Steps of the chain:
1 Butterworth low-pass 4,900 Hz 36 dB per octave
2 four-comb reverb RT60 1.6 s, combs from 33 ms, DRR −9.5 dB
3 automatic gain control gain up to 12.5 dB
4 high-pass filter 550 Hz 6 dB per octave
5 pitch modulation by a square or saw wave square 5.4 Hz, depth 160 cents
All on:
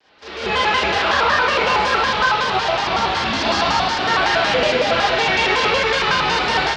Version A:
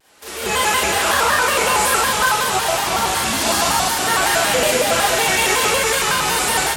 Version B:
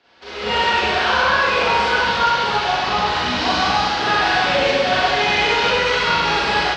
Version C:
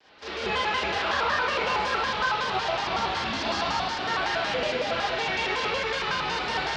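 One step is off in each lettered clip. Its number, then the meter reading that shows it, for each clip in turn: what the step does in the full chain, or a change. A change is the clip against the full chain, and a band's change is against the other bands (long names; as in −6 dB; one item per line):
1, 8 kHz band +17.0 dB
5, 8 kHz band −1.5 dB
3, change in integrated loudness −9.5 LU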